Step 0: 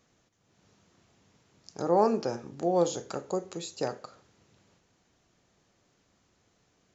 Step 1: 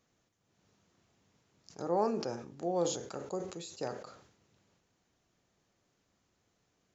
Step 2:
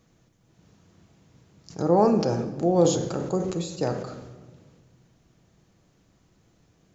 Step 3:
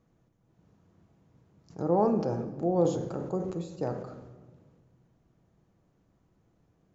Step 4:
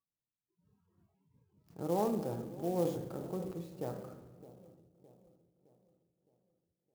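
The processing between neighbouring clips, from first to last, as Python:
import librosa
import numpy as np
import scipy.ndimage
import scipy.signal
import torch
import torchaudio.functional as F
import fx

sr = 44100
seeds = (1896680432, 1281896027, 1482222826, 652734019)

y1 = fx.sustainer(x, sr, db_per_s=77.0)
y1 = y1 * 10.0 ** (-7.0 / 20.0)
y2 = fx.low_shelf(y1, sr, hz=300.0, db=11.0)
y2 = fx.room_shoebox(y2, sr, seeds[0], volume_m3=1200.0, walls='mixed', distance_m=0.64)
y2 = y2 * 10.0 ** (7.5 / 20.0)
y3 = fx.curve_eq(y2, sr, hz=(990.0, 2300.0, 4400.0), db=(0, -7, -11))
y3 = y3 * 10.0 ** (-5.5 / 20.0)
y4 = fx.noise_reduce_blind(y3, sr, reduce_db=27)
y4 = fx.echo_wet_lowpass(y4, sr, ms=614, feedback_pct=46, hz=720.0, wet_db=-16.0)
y4 = fx.clock_jitter(y4, sr, seeds[1], jitter_ms=0.032)
y4 = y4 * 10.0 ** (-7.5 / 20.0)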